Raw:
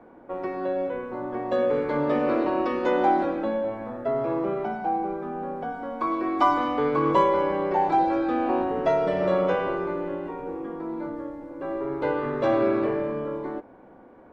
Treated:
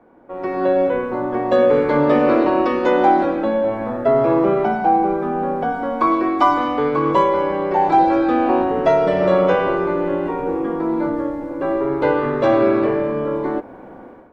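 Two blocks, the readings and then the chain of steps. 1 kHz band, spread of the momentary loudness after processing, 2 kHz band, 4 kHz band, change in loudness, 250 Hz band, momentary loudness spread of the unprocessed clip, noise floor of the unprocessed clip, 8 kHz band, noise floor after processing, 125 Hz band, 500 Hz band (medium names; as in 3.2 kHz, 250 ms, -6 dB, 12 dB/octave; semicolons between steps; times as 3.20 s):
+7.5 dB, 7 LU, +8.0 dB, +7.0 dB, +8.0 dB, +8.5 dB, 11 LU, -50 dBFS, no reading, -39 dBFS, +8.0 dB, +8.0 dB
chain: level rider gain up to 14 dB; trim -2 dB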